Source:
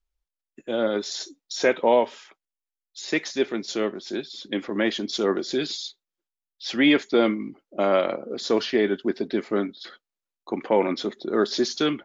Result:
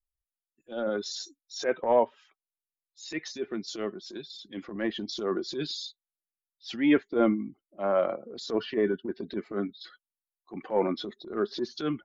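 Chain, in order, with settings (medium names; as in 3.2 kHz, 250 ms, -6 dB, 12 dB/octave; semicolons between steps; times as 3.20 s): expander on every frequency bin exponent 1.5; low-pass that closes with the level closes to 1.7 kHz, closed at -22.5 dBFS; transient shaper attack -11 dB, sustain +4 dB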